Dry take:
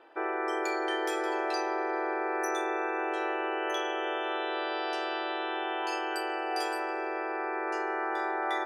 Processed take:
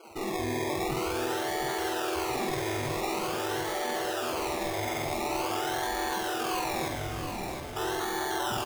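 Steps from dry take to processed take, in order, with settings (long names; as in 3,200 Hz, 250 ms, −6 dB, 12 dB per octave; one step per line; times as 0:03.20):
brickwall limiter −28.5 dBFS, peak gain reduction 9.5 dB
automatic gain control
soft clipping −36 dBFS, distortion −5 dB
0:06.88–0:07.75: resonant band-pass 1,100 Hz → 3,900 Hz, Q 1.3
spectral peaks only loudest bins 16
sample-and-hold swept by an LFO 24×, swing 60% 0.46 Hz
double-tracking delay 49 ms −4 dB
repeating echo 720 ms, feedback 39%, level −8 dB
level +8 dB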